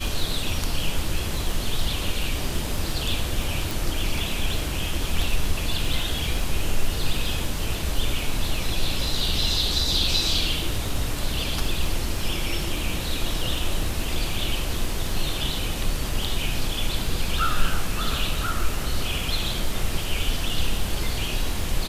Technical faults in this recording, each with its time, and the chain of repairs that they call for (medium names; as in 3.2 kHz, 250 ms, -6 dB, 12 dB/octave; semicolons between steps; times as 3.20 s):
crackle 29 per s -30 dBFS
3.71 s: pop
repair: de-click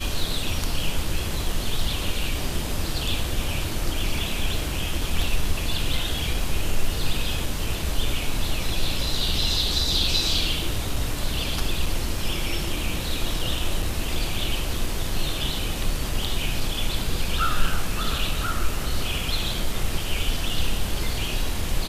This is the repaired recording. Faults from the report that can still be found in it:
nothing left